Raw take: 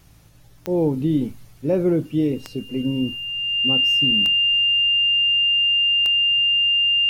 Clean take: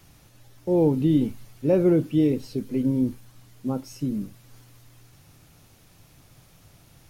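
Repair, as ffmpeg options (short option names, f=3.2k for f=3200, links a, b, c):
-af "adeclick=t=4,bandreject=f=54:t=h:w=4,bandreject=f=108:t=h:w=4,bandreject=f=162:t=h:w=4,bandreject=f=2.8k:w=30"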